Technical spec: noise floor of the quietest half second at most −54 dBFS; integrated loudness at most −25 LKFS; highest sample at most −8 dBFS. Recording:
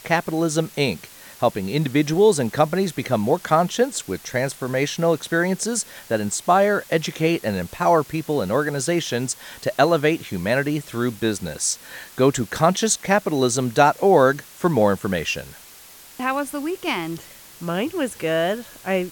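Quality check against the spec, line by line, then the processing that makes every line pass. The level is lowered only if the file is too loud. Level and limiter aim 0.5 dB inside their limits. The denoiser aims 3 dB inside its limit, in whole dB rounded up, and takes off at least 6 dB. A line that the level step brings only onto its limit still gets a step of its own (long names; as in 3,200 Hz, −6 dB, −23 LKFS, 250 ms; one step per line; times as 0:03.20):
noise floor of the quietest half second −45 dBFS: out of spec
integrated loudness −21.5 LKFS: out of spec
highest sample −3.0 dBFS: out of spec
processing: broadband denoise 8 dB, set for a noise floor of −45 dBFS
level −4 dB
brickwall limiter −8.5 dBFS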